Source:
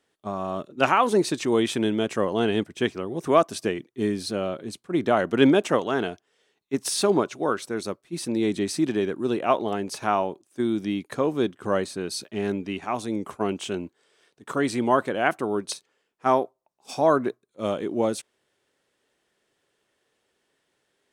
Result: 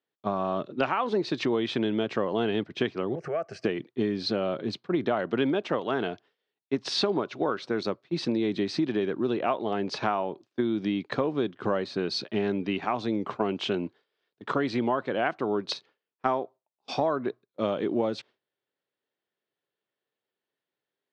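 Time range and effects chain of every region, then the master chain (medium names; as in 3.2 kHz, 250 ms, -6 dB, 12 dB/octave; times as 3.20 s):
3.15–3.64 s: compression 2.5:1, threshold -34 dBFS + static phaser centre 990 Hz, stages 6
whole clip: gate with hold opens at -42 dBFS; elliptic band-pass 110–4400 Hz, stop band 50 dB; compression 6:1, threshold -29 dBFS; trim +5.5 dB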